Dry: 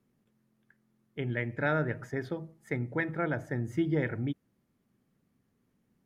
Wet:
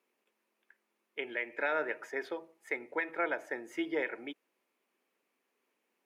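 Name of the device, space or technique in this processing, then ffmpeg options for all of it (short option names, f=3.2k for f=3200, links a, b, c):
laptop speaker: -af "highpass=f=380:w=0.5412,highpass=f=380:w=1.3066,equalizer=f=960:t=o:w=0.23:g=5,equalizer=f=2.5k:t=o:w=0.52:g=9.5,alimiter=limit=-21dB:level=0:latency=1:release=148"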